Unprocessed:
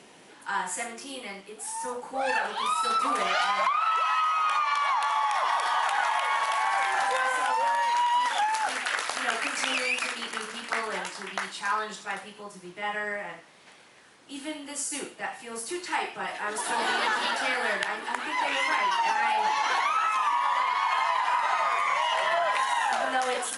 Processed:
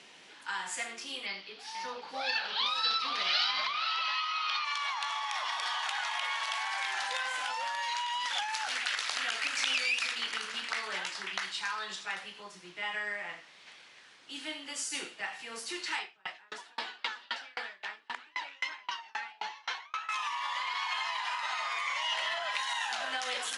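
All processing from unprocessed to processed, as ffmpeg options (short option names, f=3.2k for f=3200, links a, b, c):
-filter_complex "[0:a]asettb=1/sr,asplit=3[a][b][c];[a]atrim=end=1.264[d];[b]atrim=start=1.26:end=4.65,asetpts=PTS-STARTPTS,afade=t=in:d=0.004:c=qsin,afade=t=out:st=3.386:d=0.004:c=qsin,highshelf=f=6.2k:t=q:w=3:g=-11,aecho=1:1:487:0.316,atrim=end_sample=149499[e];[c]atrim=start=4.646[f];[d][e]acrossfade=d=0.004:c1=hsin:c2=qsin[g];[g][f]acrossfade=d=0.004:c1=qsin:c2=hsin,asettb=1/sr,asplit=3[h][i][j];[h]atrim=end=15.994[k];[i]atrim=start=15.99:end=20.09,asetpts=PTS-STARTPTS,afade=t=in:d=0.004:c=qsin,afade=t=out:st=4.096:d=0.004:c=qsin,lowpass=6.8k,aeval=exprs='val(0)*pow(10,-36*if(lt(mod(3.8*n/s,1),2*abs(3.8)/1000),1-mod(3.8*n/s,1)/(2*abs(3.8)/1000),(mod(3.8*n/s,1)-2*abs(3.8)/1000)/(1-2*abs(3.8)/1000))/20)':c=same[l];[j]atrim=start=20.086[m];[k][l]acrossfade=d=0.004:c1=hsin:c2=qsin[n];[n][m]acrossfade=d=0.004:c1=qsin:c2=hsin,lowpass=4.5k,tiltshelf=f=1.5k:g=-8.5,acrossover=split=130|3000[o][p][q];[p]acompressor=threshold=-32dB:ratio=6[r];[o][r][q]amix=inputs=3:normalize=0,volume=-1.5dB"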